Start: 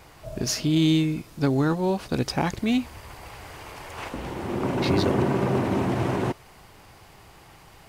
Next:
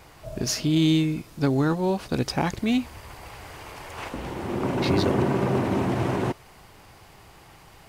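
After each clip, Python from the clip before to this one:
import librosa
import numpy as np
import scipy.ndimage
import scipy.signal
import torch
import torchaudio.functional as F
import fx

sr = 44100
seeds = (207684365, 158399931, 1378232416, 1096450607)

y = x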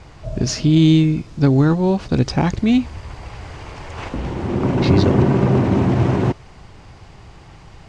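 y = scipy.signal.sosfilt(scipy.signal.butter(4, 7400.0, 'lowpass', fs=sr, output='sos'), x)
y = fx.low_shelf(y, sr, hz=240.0, db=10.5)
y = y * 10.0 ** (3.0 / 20.0)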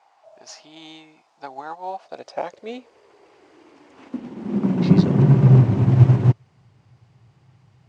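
y = fx.filter_sweep_highpass(x, sr, from_hz=790.0, to_hz=120.0, start_s=1.75, end_s=5.65, q=5.2)
y = fx.upward_expand(y, sr, threshold_db=-27.0, expansion=1.5)
y = y * 10.0 ** (-5.0 / 20.0)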